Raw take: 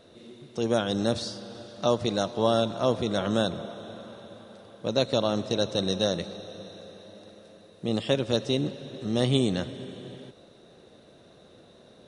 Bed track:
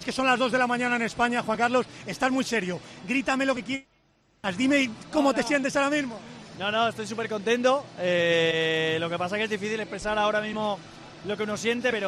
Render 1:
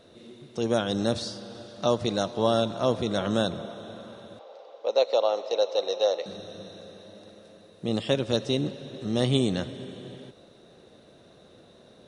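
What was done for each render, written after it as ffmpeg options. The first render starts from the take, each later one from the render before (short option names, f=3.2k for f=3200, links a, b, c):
-filter_complex "[0:a]asettb=1/sr,asplit=3[a][b][c];[a]atrim=end=4.394[d];[b]atrim=start=4.39:end=6.26,asetpts=PTS-STARTPTS,afade=t=in:d=0.004:c=qsin,afade=t=out:st=1.866:d=0.004:c=qsin,highpass=f=460:w=0.5412,highpass=f=460:w=1.3066,equalizer=f=500:t=q:w=4:g=7,equalizer=f=800:t=q:w=4:g=6,equalizer=f=1.6k:t=q:w=4:g=-9,equalizer=f=3.5k:t=q:w=4:g=-5,lowpass=f=5.6k:w=0.5412,lowpass=f=5.6k:w=1.3066[e];[c]atrim=start=6.256[f];[d][e]acrossfade=d=0.004:c1=hsin:c2=qsin[g];[g][f]acrossfade=d=0.004:c1=qsin:c2=hsin"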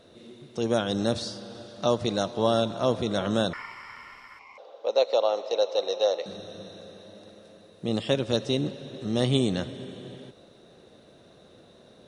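-filter_complex "[0:a]asettb=1/sr,asplit=3[a][b][c];[a]atrim=end=3.534[d];[b]atrim=start=3.53:end=4.58,asetpts=PTS-STARTPTS,afade=t=in:d=0.004:c=qsin,afade=t=out:st=1.046:d=0.004:c=qsin,aeval=exprs='val(0)*sin(2*PI*1600*n/s)':c=same[e];[c]atrim=start=4.576[f];[d][e]acrossfade=d=0.004:c1=hsin:c2=qsin[g];[g][f]acrossfade=d=0.004:c1=qsin:c2=hsin"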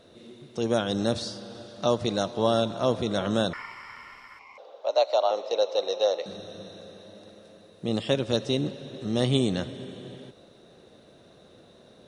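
-filter_complex "[0:a]asettb=1/sr,asplit=3[a][b][c];[a]atrim=end=4.814[d];[b]atrim=start=4.81:end=5.31,asetpts=PTS-STARTPTS,afade=t=in:d=0.004:c=qsin,afade=t=out:st=0.496:d=0.004:c=qsin,afreqshift=66[e];[c]atrim=start=5.306[f];[d][e]acrossfade=d=0.004:c1=hsin:c2=qsin[g];[g][f]acrossfade=d=0.004:c1=qsin:c2=hsin"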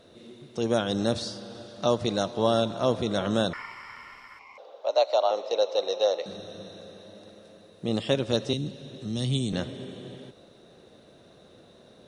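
-filter_complex "[0:a]asettb=1/sr,asplit=3[a][b][c];[a]atrim=end=8.534[d];[b]atrim=start=8.53:end=9.53,asetpts=PTS-STARTPTS,afade=t=in:d=0.004:c=qsin,afade=t=out:st=0.996:d=0.004:c=qsin,acrossover=split=240|3000[e][f][g];[f]acompressor=threshold=-48dB:ratio=2:attack=3.2:release=140:knee=2.83:detection=peak[h];[e][h][g]amix=inputs=3:normalize=0[i];[c]atrim=start=9.526[j];[d][i]acrossfade=d=0.004:c1=hsin:c2=qsin[k];[k][j]acrossfade=d=0.004:c1=qsin:c2=hsin"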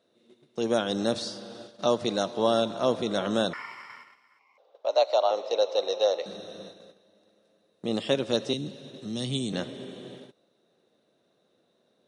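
-af "agate=range=-15dB:threshold=-43dB:ratio=16:detection=peak,highpass=180"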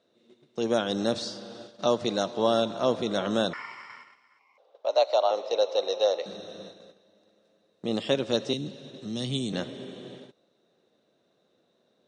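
-af "lowpass=f=8.3k:w=0.5412,lowpass=f=8.3k:w=1.3066"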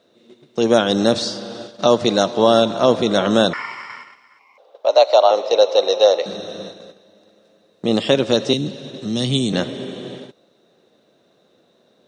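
-af "volume=11dB,alimiter=limit=-2dB:level=0:latency=1"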